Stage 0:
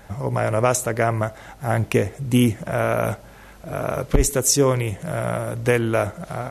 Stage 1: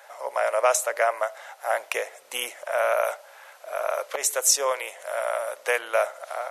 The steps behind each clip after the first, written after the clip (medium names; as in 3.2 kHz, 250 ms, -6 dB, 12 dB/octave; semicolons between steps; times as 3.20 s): Chebyshev high-pass 560 Hz, order 4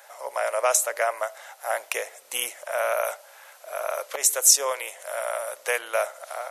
treble shelf 4.8 kHz +9 dB; trim -2.5 dB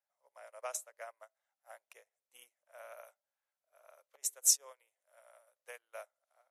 upward expansion 2.5:1, over -37 dBFS; trim -8.5 dB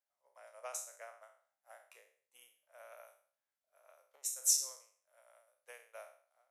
spectral sustain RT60 0.49 s; trim -5 dB